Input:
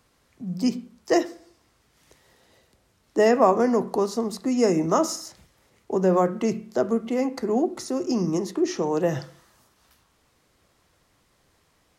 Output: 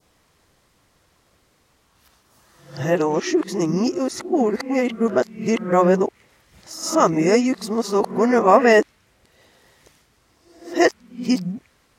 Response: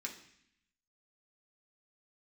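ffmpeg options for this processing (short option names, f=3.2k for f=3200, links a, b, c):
-af "areverse,adynamicequalizer=threshold=0.00708:dfrequency=2100:dqfactor=1:tfrequency=2100:tqfactor=1:attack=5:release=100:ratio=0.375:range=4:mode=boostabove:tftype=bell,volume=3.5dB"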